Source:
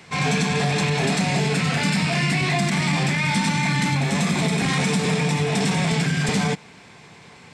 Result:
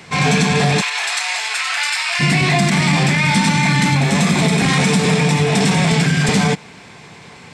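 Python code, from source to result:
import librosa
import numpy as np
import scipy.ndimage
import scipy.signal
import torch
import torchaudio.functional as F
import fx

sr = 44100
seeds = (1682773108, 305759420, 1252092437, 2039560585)

y = fx.highpass(x, sr, hz=950.0, slope=24, at=(0.8, 2.19), fade=0.02)
y = F.gain(torch.from_numpy(y), 6.5).numpy()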